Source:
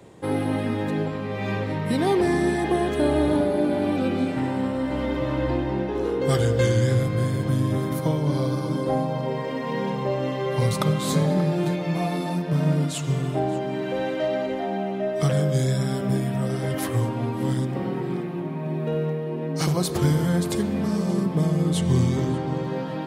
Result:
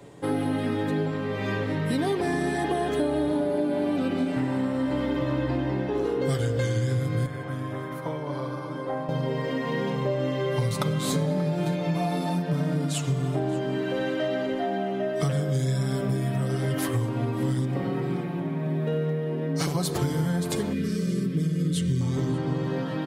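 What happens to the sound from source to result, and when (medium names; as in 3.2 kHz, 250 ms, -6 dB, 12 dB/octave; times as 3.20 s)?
7.26–9.09 s: three-band isolator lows -13 dB, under 550 Hz, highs -14 dB, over 2.3 kHz
20.73–22.01 s: Butterworth band-stop 830 Hz, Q 0.74
whole clip: hum notches 50/100/150 Hz; comb 7 ms, depth 46%; compression, threshold -22 dBFS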